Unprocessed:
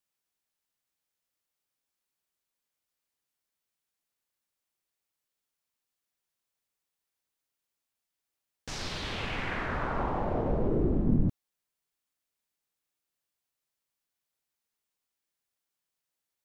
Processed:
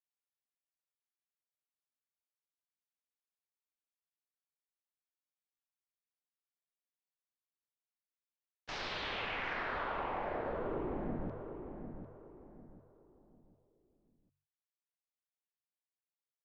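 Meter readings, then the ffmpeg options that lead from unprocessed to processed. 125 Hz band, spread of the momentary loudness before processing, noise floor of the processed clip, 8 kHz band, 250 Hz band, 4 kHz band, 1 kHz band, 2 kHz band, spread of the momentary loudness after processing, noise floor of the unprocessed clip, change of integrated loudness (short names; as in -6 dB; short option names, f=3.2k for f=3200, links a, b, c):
-15.5 dB, 9 LU, under -85 dBFS, -13.5 dB, -11.5 dB, -4.0 dB, -3.5 dB, -2.5 dB, 19 LU, under -85 dBFS, -8.0 dB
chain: -filter_complex "[0:a]bandreject=f=47.28:t=h:w=4,bandreject=f=94.56:t=h:w=4,bandreject=f=141.84:t=h:w=4,agate=range=-16dB:threshold=-42dB:ratio=16:detection=peak,lowpass=f=6.5k:w=0.5412,lowpass=f=6.5k:w=1.3066,acrossover=split=390 4000:gain=0.251 1 0.158[a][b][c];[a][b][c]amix=inputs=3:normalize=0,acompressor=threshold=-36dB:ratio=6,asplit=2[d][e];[e]adelay=749,lowpass=f=1.9k:p=1,volume=-7.5dB,asplit=2[f][g];[g]adelay=749,lowpass=f=1.9k:p=1,volume=0.34,asplit=2[h][i];[i]adelay=749,lowpass=f=1.9k:p=1,volume=0.34,asplit=2[j][k];[k]adelay=749,lowpass=f=1.9k:p=1,volume=0.34[l];[f][h][j][l]amix=inputs=4:normalize=0[m];[d][m]amix=inputs=2:normalize=0,volume=1dB"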